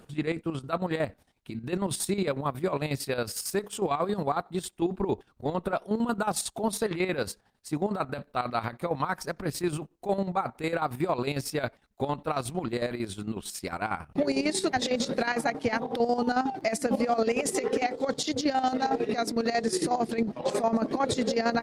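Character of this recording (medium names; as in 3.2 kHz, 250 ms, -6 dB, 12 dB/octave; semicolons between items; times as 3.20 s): chopped level 11 Hz, depth 65%, duty 50%; Opus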